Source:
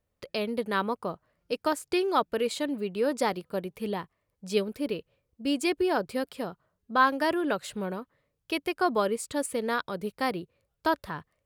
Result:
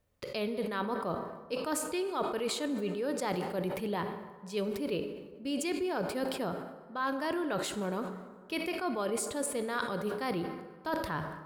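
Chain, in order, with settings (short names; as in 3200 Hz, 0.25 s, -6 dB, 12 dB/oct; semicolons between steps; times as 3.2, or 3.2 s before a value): reverse; compressor 6:1, threshold -35 dBFS, peak gain reduction 17.5 dB; reverse; plate-style reverb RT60 2.2 s, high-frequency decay 0.5×, DRR 9.5 dB; sustainer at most 55 dB/s; gain +3.5 dB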